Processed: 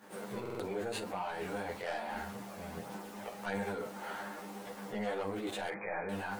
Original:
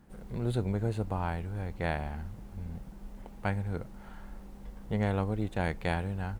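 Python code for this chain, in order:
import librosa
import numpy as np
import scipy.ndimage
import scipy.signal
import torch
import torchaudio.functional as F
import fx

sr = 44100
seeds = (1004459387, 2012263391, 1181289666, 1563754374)

p1 = scipy.signal.sosfilt(scipy.signal.butter(2, 420.0, 'highpass', fs=sr, output='sos'), x)
p2 = fx.over_compress(p1, sr, threshold_db=-48.0, ratio=-1.0)
p3 = p1 + (p2 * librosa.db_to_amplitude(3.0))
p4 = 10.0 ** (-29.5 / 20.0) * np.tanh(p3 / 10.0 ** (-29.5 / 20.0))
p5 = fx.chorus_voices(p4, sr, voices=2, hz=0.85, base_ms=19, depth_ms=4.8, mix_pct=60)
p6 = fx.brickwall_lowpass(p5, sr, high_hz=2500.0, at=(5.69, 6.09))
p7 = fx.room_early_taps(p6, sr, ms=(10, 49), db=(-3.5, -12.5))
p8 = fx.buffer_glitch(p7, sr, at_s=(0.41,), block=2048, repeats=3)
y = p8 * librosa.db_to_amplitude(1.5)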